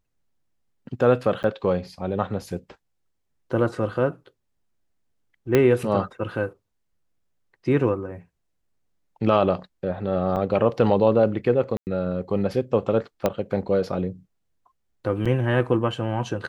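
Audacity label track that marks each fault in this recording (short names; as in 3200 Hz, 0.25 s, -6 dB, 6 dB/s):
1.430000	1.440000	gap 9.1 ms
5.550000	5.550000	pop -6 dBFS
10.360000	10.370000	gap 6.9 ms
11.770000	11.870000	gap 99 ms
13.260000	13.260000	pop -8 dBFS
15.250000	15.260000	gap 6 ms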